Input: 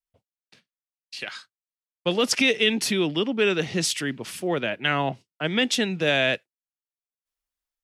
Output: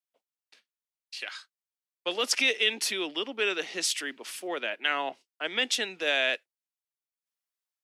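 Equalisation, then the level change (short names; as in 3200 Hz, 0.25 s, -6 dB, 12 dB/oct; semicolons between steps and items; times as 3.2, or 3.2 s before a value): HPF 270 Hz 24 dB/oct; low shelf 470 Hz -11 dB; -2.5 dB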